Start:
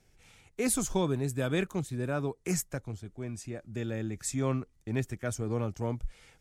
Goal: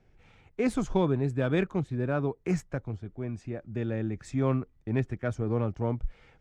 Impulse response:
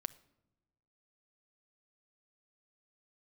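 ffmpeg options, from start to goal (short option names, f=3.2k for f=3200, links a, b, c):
-af "adynamicsmooth=sensitivity=1:basefreq=2.5k,volume=3.5dB"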